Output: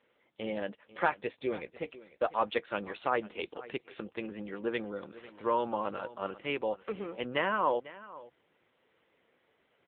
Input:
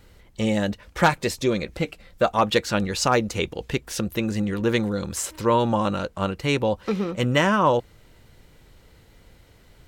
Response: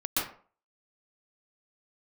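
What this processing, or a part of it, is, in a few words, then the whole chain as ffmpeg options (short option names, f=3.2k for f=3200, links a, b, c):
satellite phone: -af "highpass=340,lowpass=3.3k,highshelf=f=5.2k:g=4.5,aecho=1:1:495:0.126,volume=-8dB" -ar 8000 -c:a libopencore_amrnb -b:a 6700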